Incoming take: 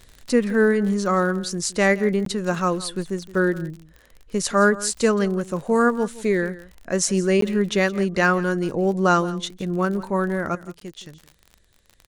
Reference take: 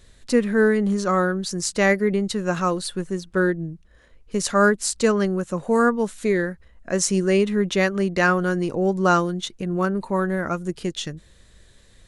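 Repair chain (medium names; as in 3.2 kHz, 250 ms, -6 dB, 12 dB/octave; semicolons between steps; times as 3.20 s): de-click; interpolate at 2.25/7.41/10.80 s, 13 ms; inverse comb 169 ms -18 dB; trim 0 dB, from 10.55 s +10 dB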